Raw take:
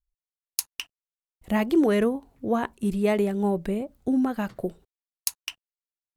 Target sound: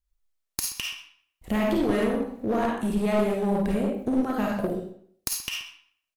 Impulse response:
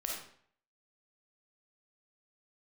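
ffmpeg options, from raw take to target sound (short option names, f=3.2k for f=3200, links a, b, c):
-filter_complex "[0:a]acompressor=threshold=-25dB:ratio=6[a];[1:a]atrim=start_sample=2205,asetrate=43218,aresample=44100[b];[a][b]afir=irnorm=-1:irlink=0,aeval=exprs='clip(val(0),-1,0.0398)':c=same,asplit=2[c][d];[d]adelay=128.3,volume=-17dB,highshelf=f=4k:g=-2.89[e];[c][e]amix=inputs=2:normalize=0,volume=4.5dB"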